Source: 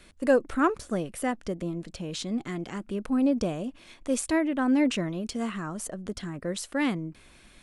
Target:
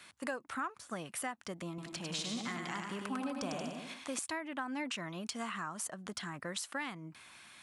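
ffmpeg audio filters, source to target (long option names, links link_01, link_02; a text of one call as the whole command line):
ffmpeg -i in.wav -filter_complex "[0:a]highpass=frequency=90:width=0.5412,highpass=frequency=90:width=1.3066,lowshelf=frequency=670:width_type=q:width=1.5:gain=-9.5,acompressor=threshold=-37dB:ratio=6,asettb=1/sr,asplit=3[link_01][link_02][link_03];[link_01]atrim=end=1.684[link_04];[link_02]atrim=start=1.68:end=4.19,asetpts=PTS-STARTPTS,afade=type=in:duration=0.004:curve=qsin,afade=type=out:start_time=2.506:duration=0.004:curve=qsin,aecho=1:1:100|180|244|295.2|336.2:0.631|0.398|0.251|0.158|0.1,atrim=end_sample=110691[link_05];[link_03]atrim=start=4.186[link_06];[link_04][link_05]acrossfade=duration=0.004:curve1=hsin:curve2=qsin[link_07];[link_07][link_06]acrossfade=duration=0.004:curve1=qsin:curve2=hsin,volume=1dB" out.wav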